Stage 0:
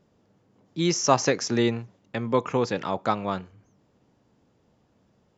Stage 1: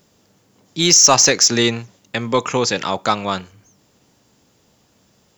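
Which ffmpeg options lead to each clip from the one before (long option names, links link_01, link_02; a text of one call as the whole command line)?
ffmpeg -i in.wav -af "crystalizer=i=6.5:c=0,acontrast=39,volume=-1dB" out.wav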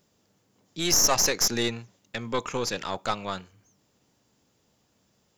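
ffmpeg -i in.wav -af "aeval=exprs='(tanh(2.24*val(0)+0.75)-tanh(0.75))/2.24':channel_layout=same,volume=-6dB" out.wav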